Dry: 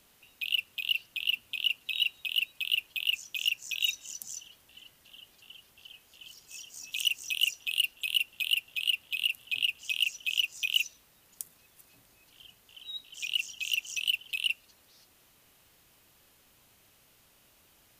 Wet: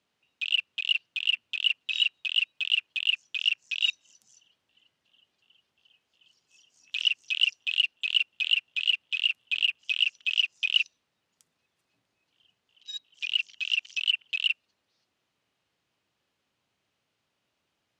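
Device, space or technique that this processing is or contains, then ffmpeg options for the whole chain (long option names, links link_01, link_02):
over-cleaned archive recording: -af "highpass=100,lowpass=5000,afwtdn=0.00891,volume=4dB"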